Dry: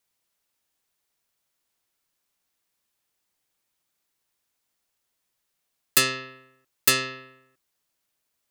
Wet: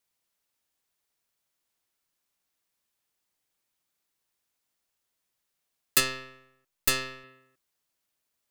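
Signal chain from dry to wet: 6–7.24 half-wave gain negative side -7 dB; gain -3 dB

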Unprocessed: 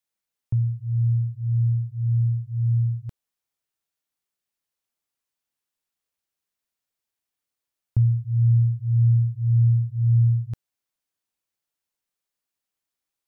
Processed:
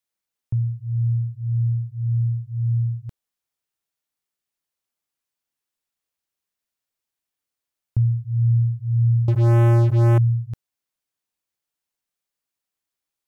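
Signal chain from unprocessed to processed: 9.28–10.18 sample leveller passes 5

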